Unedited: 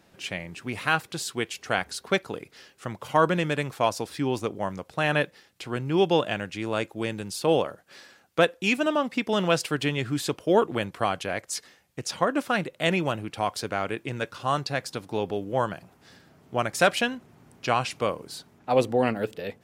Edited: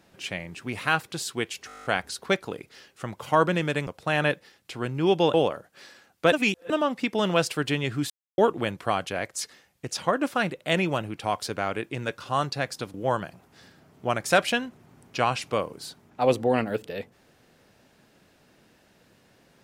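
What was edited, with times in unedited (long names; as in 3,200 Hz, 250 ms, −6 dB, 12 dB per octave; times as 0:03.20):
0:01.67: stutter 0.02 s, 10 plays
0:03.69–0:04.78: remove
0:06.25–0:07.48: remove
0:08.46–0:08.84: reverse
0:10.24–0:10.52: silence
0:15.08–0:15.43: remove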